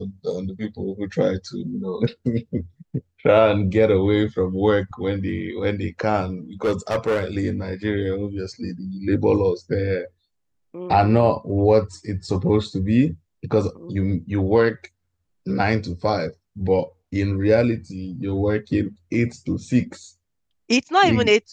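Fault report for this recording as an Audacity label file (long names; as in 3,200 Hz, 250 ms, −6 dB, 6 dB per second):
6.640000	7.250000	clipping −16.5 dBFS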